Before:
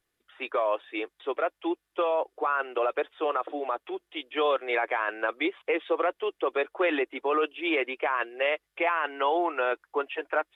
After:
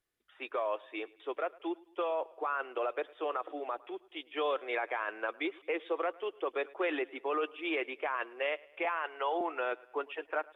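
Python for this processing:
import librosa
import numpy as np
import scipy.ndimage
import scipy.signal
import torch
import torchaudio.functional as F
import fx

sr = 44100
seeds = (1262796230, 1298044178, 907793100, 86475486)

y = fx.ellip_highpass(x, sr, hz=330.0, order=4, stop_db=40, at=(8.85, 9.41))
y = fx.echo_feedback(y, sr, ms=107, feedback_pct=49, wet_db=-23.0)
y = y * librosa.db_to_amplitude(-7.0)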